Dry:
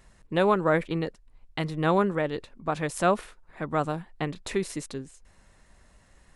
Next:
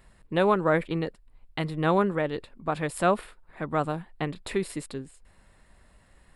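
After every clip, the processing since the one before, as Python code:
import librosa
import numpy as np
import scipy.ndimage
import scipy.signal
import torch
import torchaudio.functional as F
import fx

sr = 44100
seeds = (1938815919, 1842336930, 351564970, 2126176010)

y = fx.peak_eq(x, sr, hz=6100.0, db=-15.0, octaves=0.26)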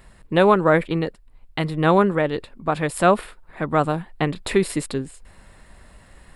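y = fx.rider(x, sr, range_db=3, speed_s=2.0)
y = y * librosa.db_to_amplitude(7.0)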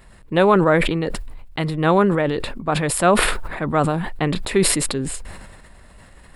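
y = fx.sustainer(x, sr, db_per_s=36.0)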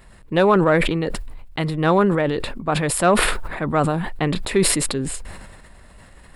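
y = 10.0 ** (-3.5 / 20.0) * np.tanh(x / 10.0 ** (-3.5 / 20.0))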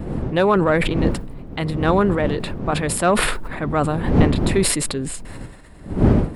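y = fx.dmg_wind(x, sr, seeds[0], corner_hz=240.0, level_db=-22.0)
y = y * librosa.db_to_amplitude(-1.0)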